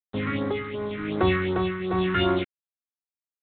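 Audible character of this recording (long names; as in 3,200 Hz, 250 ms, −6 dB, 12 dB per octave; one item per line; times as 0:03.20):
a quantiser's noise floor 6 bits, dither none
phaser sweep stages 4, 2.7 Hz, lowest notch 630–3,000 Hz
tremolo triangle 0.98 Hz, depth 60%
IMA ADPCM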